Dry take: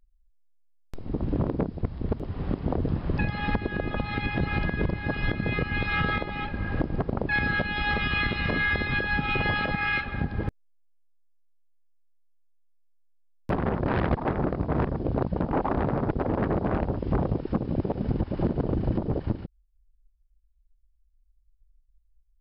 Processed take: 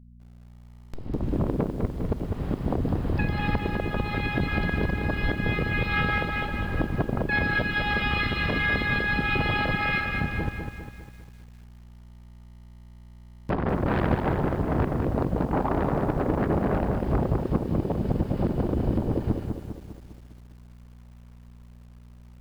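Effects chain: buzz 60 Hz, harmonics 4, -50 dBFS -5 dB/oct; lo-fi delay 0.201 s, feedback 55%, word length 9-bit, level -5.5 dB

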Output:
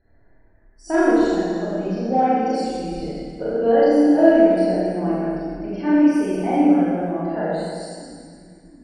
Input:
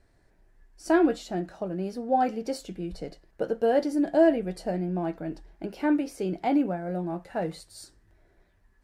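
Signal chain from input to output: loudest bins only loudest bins 64; in parallel at -8 dB: soft clip -20 dBFS, distortion -12 dB; on the sum: split-band echo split 310 Hz, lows 0.711 s, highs 0.11 s, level -15 dB; Schroeder reverb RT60 1.9 s, combs from 27 ms, DRR -9.5 dB; gain -5 dB

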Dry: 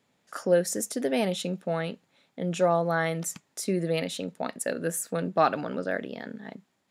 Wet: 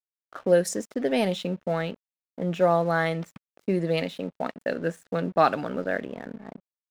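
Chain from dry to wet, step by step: low-pass opened by the level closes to 770 Hz, open at -20 dBFS; crossover distortion -50.5 dBFS; gain +2.5 dB

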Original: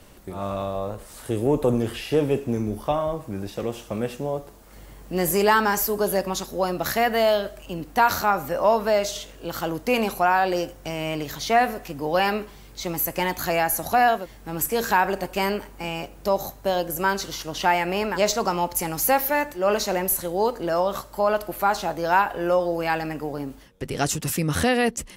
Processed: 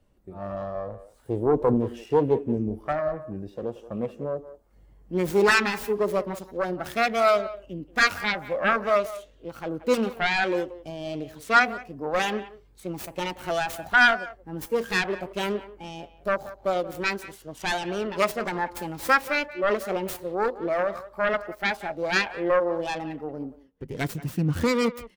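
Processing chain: self-modulated delay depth 0.61 ms; speakerphone echo 0.18 s, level -10 dB; spectral expander 1.5:1

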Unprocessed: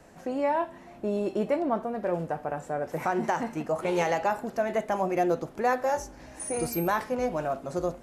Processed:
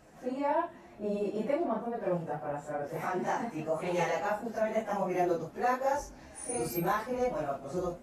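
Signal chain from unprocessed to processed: phase scrambler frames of 0.1 s; gain -4 dB

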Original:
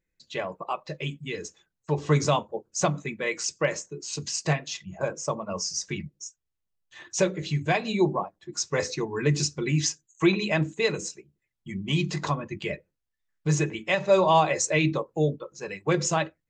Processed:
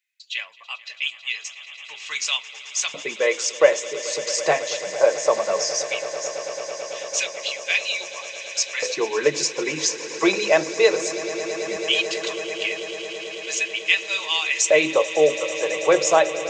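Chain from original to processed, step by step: LFO high-pass square 0.17 Hz 530–2700 Hz; swelling echo 0.11 s, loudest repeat 8, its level -18 dB; gain +5 dB

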